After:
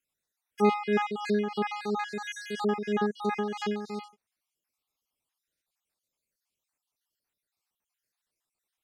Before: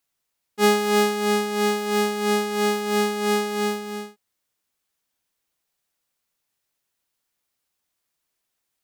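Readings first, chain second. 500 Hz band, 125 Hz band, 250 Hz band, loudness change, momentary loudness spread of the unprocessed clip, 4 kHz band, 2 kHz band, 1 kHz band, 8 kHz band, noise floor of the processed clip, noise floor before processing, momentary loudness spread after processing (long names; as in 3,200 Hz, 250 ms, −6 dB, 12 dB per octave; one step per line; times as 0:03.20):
−8.0 dB, can't be measured, −5.0 dB, −7.5 dB, 8 LU, −13.0 dB, −8.5 dB, −6.5 dB, −18.0 dB, below −85 dBFS, −79 dBFS, 10 LU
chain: time-frequency cells dropped at random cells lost 53%
treble cut that deepens with the level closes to 2,300 Hz, closed at −21.5 dBFS
dynamic equaliser 210 Hz, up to +3 dB, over −36 dBFS, Q 3.8
level −4 dB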